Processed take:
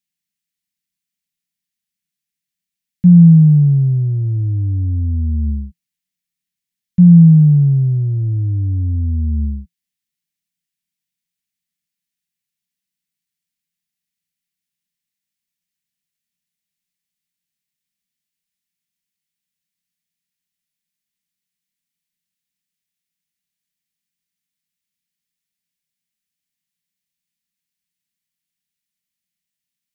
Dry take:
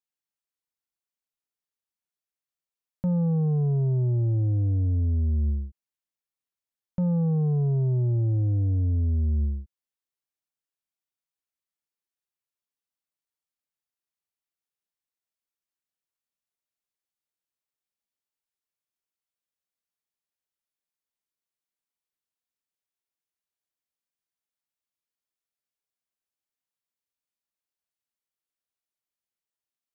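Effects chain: EQ curve 120 Hz 0 dB, 170 Hz +13 dB, 480 Hz -18 dB, 1200 Hz -13 dB, 1900 Hz +3 dB; gain +6 dB

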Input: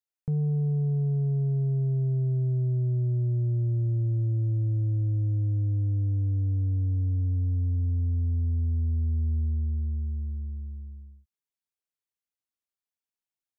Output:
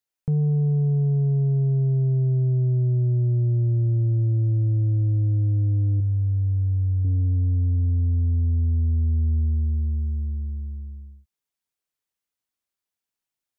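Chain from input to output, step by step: 6–7.05 bell 320 Hz -14 dB 1.1 oct; gain +5 dB

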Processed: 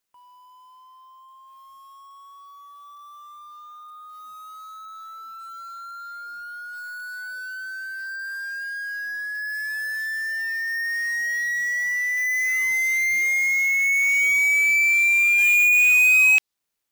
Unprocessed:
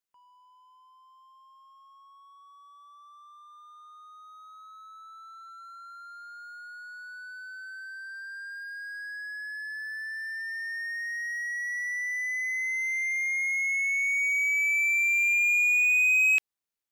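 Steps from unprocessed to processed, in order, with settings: dynamic EQ 4500 Hz, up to +5 dB, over -42 dBFS, Q 0.98; in parallel at -1.5 dB: compressor 6:1, threshold -32 dBFS, peak gain reduction 12.5 dB; on the sum: short-mantissa float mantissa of 2-bit; gain +3 dB

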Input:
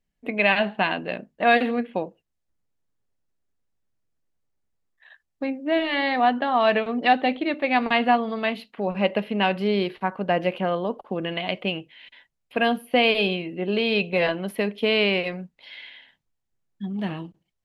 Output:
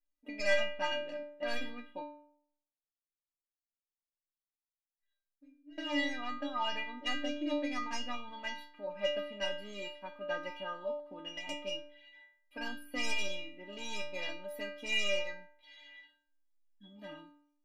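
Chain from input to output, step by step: tracing distortion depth 0.072 ms; 2.02–5.78 passive tone stack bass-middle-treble 10-0-1; metallic resonator 290 Hz, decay 0.66 s, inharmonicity 0.008; gain +6.5 dB

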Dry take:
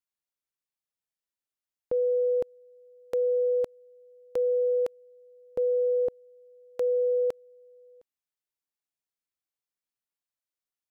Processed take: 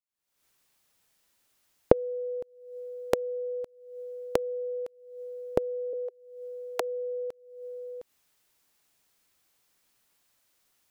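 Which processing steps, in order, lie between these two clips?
recorder AGC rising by 68 dB/s; 5.93–6.8 steep high-pass 400 Hz 96 dB/oct; gain -8.5 dB

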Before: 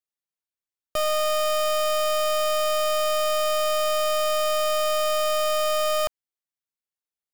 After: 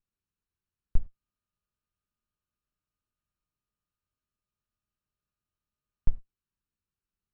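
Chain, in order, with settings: minimum comb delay 0.73 ms; overloaded stage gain 32 dB; RIAA curve playback; non-linear reverb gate 0.13 s falling, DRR 10 dB; gain +2.5 dB

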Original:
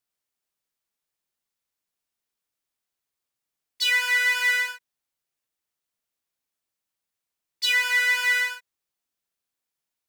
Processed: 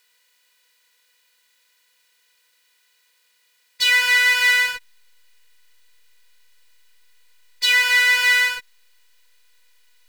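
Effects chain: per-bin compression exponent 0.6; in parallel at -4 dB: backlash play -25 dBFS

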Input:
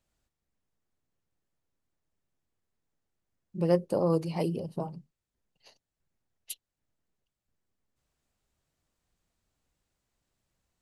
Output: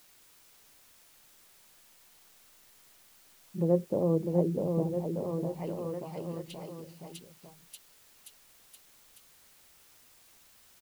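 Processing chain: bouncing-ball echo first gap 0.65 s, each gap 0.9×, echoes 5; treble ducked by the level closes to 610 Hz, closed at -27.5 dBFS; requantised 10-bit, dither triangular

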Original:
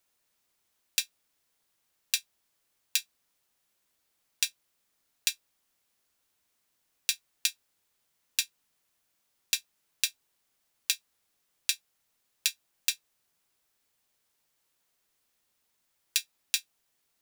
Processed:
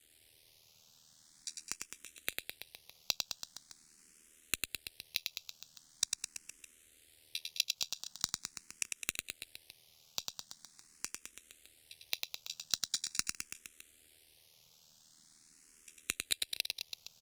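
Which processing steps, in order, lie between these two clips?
slices in reverse order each 0.147 s, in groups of 6; LPF 9900 Hz 12 dB/oct; bell 990 Hz -14.5 dB 1.9 oct; limiter -13.5 dBFS, peak gain reduction 6.5 dB; AM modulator 79 Hz, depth 85%; flipped gate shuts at -30 dBFS, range -29 dB; sine folder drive 17 dB, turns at -13 dBFS; crackle 48/s -53 dBFS; reverse bouncing-ball echo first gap 0.1 s, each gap 1.1×, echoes 5; endless phaser +0.43 Hz; gain +1 dB

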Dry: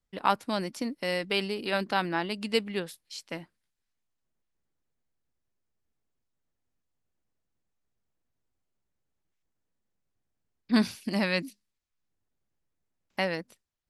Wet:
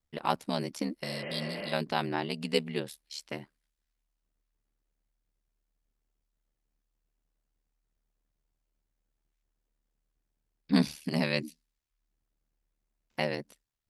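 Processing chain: dynamic EQ 1400 Hz, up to -6 dB, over -44 dBFS, Q 1.5; ring modulator 37 Hz; spectral repair 1.06–1.7, 250–3200 Hz before; gain +2 dB

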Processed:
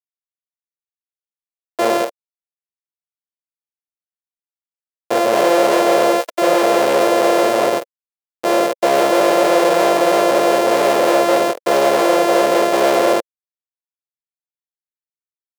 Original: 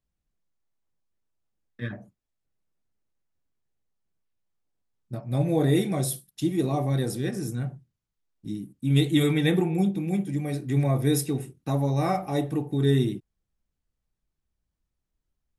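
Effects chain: sample sorter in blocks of 128 samples; fuzz box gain 48 dB, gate -57 dBFS; resonant high-pass 530 Hz, resonance Q 4.3; gain -1 dB

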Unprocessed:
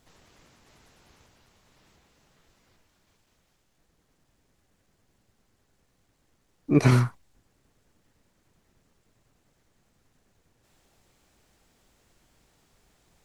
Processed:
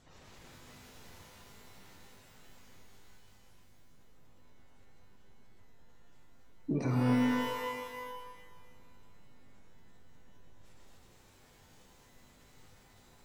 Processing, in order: spectral gate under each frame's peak -25 dB strong; compressor 10:1, threshold -31 dBFS, peak gain reduction 17.5 dB; shimmer reverb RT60 1.7 s, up +12 st, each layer -2 dB, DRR 1 dB

